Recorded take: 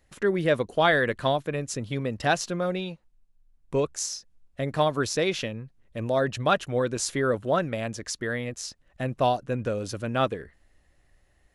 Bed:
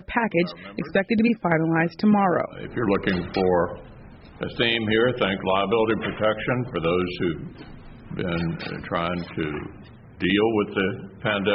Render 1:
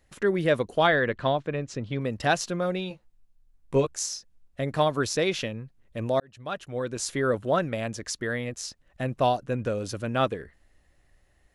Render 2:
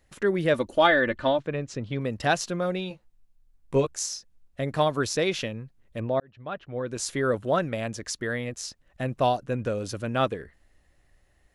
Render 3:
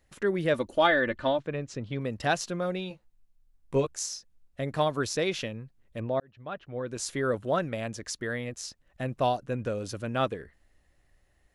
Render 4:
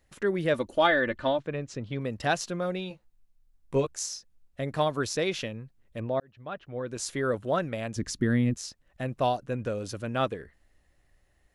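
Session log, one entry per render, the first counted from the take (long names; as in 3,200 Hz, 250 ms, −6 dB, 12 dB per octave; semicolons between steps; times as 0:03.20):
0:00.87–0:02.01: high-frequency loss of the air 130 metres; 0:02.89–0:03.87: double-tracking delay 15 ms −4.5 dB; 0:06.20–0:07.30: fade in
0:00.54–0:01.39: comb filter 3.4 ms, depth 67%; 0:06.00–0:06.88: high-frequency loss of the air 310 metres
level −3 dB
0:07.96–0:08.57: low shelf with overshoot 380 Hz +11.5 dB, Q 1.5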